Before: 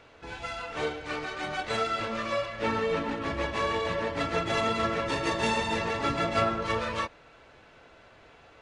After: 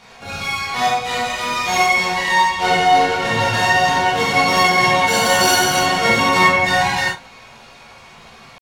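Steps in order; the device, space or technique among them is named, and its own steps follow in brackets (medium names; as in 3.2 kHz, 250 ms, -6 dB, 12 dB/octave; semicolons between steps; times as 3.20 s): chipmunk voice (pitch shift +8.5 st); 5.08–5.78 s: treble shelf 4.6 kHz +6 dB; gated-style reverb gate 130 ms flat, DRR -6.5 dB; trim +5.5 dB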